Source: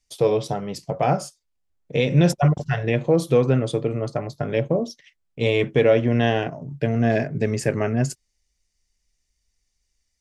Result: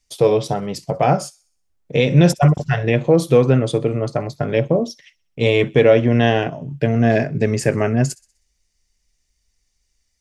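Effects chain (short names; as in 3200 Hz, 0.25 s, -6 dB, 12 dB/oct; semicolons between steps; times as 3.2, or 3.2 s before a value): thin delay 63 ms, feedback 47%, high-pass 3100 Hz, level -21 dB; gain +4.5 dB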